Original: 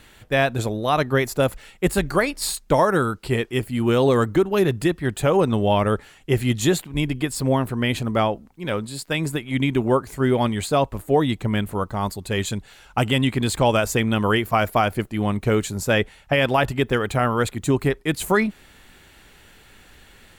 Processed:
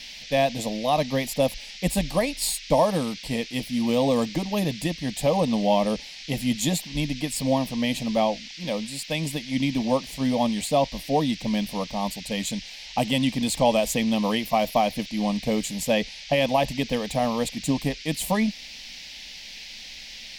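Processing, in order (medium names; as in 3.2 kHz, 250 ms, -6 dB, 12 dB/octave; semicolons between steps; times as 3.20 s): static phaser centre 380 Hz, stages 6; band noise 2–5.6 kHz -41 dBFS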